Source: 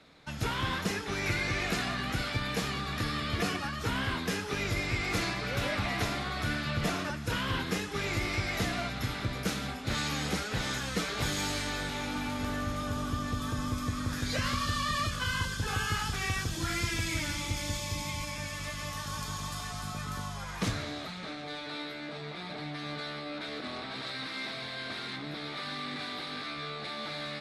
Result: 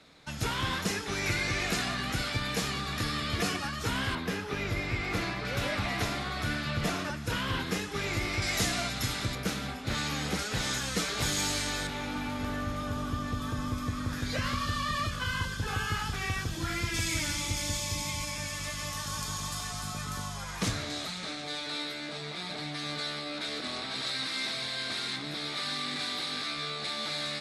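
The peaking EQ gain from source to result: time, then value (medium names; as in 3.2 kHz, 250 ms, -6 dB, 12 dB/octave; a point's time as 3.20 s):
peaking EQ 8 kHz 1.8 oct
+5.5 dB
from 4.15 s -6.5 dB
from 5.45 s +1.5 dB
from 8.42 s +12 dB
from 9.35 s 0 dB
from 10.39 s +6.5 dB
from 11.87 s -3.5 dB
from 16.94 s +6 dB
from 20.90 s +13.5 dB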